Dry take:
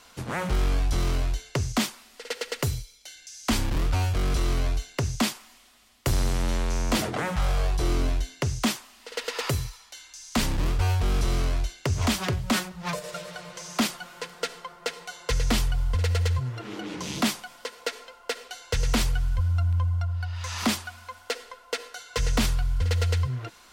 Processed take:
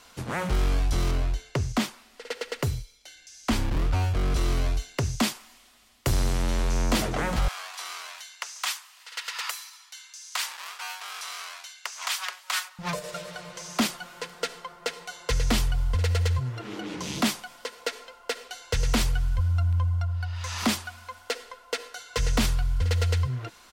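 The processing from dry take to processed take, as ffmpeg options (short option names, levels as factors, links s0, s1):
-filter_complex "[0:a]asettb=1/sr,asplit=3[s0][s1][s2];[s0]atrim=end=1.114[s3];[s1]atrim=start=1.11:end=4.36,asetpts=PTS-STARTPTS,afade=t=in:d=0.004:c=qsin,afade=t=out:st=3.246:d=0.004:c=qsin,highshelf=f=3600:g=-6.5[s4];[s2]atrim=start=4.356[s5];[s3][s4]acrossfade=d=0.004:c1=hsin:c2=qsin[s6];[s6][s5]acrossfade=d=0.004:c1=qsin:c2=hsin,asplit=2[s7][s8];[s8]afade=t=in:st=6.16:d=0.01,afade=t=out:st=6.98:d=0.01,aecho=0:1:410|820|1230|1640|2050|2460:0.281838|0.155011|0.0852561|0.0468908|0.02579|0.0141845[s9];[s7][s9]amix=inputs=2:normalize=0,asettb=1/sr,asplit=3[s10][s11][s12];[s10]atrim=end=7.484[s13];[s11]atrim=start=7.48:end=12.79,asetpts=PTS-STARTPTS,afade=t=in:d=0.004:c=qsin,afade=t=out:st=5.306:d=0.004:c=qsin,highpass=f=960:w=0.5412,highpass=f=960:w=1.3066[s14];[s12]atrim=start=12.786[s15];[s13][s14]acrossfade=d=0.004:c1=hsin:c2=qsin[s16];[s16][s15]acrossfade=d=0.004:c1=qsin:c2=hsin"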